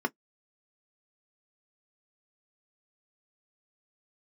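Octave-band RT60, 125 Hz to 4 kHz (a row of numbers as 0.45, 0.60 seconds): 0.10, 0.10, 0.10, 0.10, 0.10, 0.05 seconds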